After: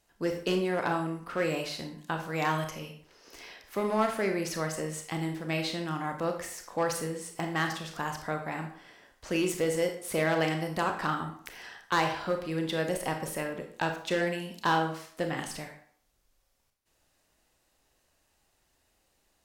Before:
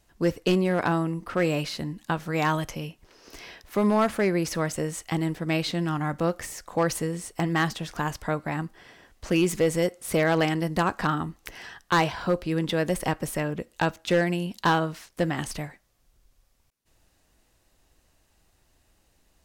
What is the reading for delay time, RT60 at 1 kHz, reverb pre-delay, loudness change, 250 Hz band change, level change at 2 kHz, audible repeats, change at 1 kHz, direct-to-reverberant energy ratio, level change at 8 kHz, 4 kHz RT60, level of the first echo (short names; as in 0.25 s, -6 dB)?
none, 0.55 s, 27 ms, -4.5 dB, -7.0 dB, -3.5 dB, none, -3.0 dB, 4.0 dB, -3.5 dB, 0.40 s, none